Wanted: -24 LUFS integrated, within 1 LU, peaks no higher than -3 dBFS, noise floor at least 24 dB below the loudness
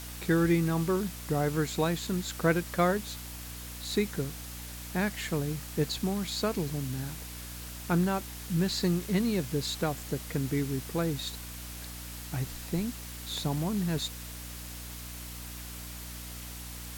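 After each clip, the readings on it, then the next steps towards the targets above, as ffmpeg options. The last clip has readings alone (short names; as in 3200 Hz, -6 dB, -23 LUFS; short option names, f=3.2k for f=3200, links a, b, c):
hum 60 Hz; harmonics up to 300 Hz; hum level -42 dBFS; noise floor -42 dBFS; noise floor target -56 dBFS; loudness -32.0 LUFS; peak -14.0 dBFS; loudness target -24.0 LUFS
-> -af "bandreject=f=60:t=h:w=4,bandreject=f=120:t=h:w=4,bandreject=f=180:t=h:w=4,bandreject=f=240:t=h:w=4,bandreject=f=300:t=h:w=4"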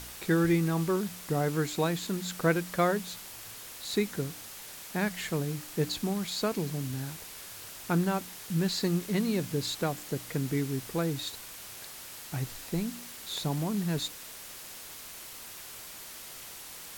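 hum none; noise floor -45 dBFS; noise floor target -57 dBFS
-> -af "afftdn=nr=12:nf=-45"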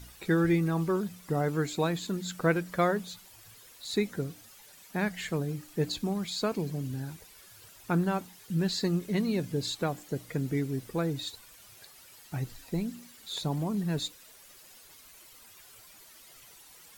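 noise floor -54 dBFS; noise floor target -56 dBFS
-> -af "afftdn=nr=6:nf=-54"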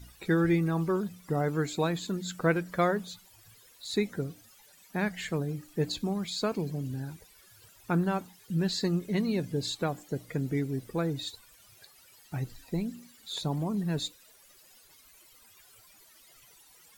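noise floor -58 dBFS; loudness -31.5 LUFS; peak -14.5 dBFS; loudness target -24.0 LUFS
-> -af "volume=7.5dB"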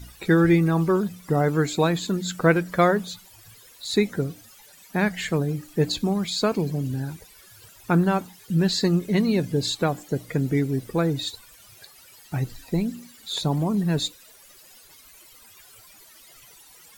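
loudness -24.0 LUFS; peak -7.0 dBFS; noise floor -51 dBFS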